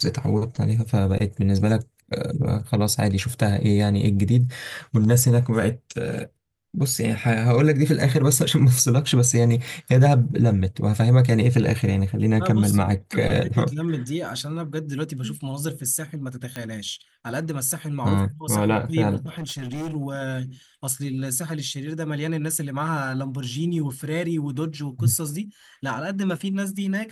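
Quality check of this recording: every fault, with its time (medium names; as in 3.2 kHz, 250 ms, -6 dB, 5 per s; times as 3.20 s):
9.68 s: pop
16.56 s: pop -16 dBFS
19.26–19.96 s: clipped -27 dBFS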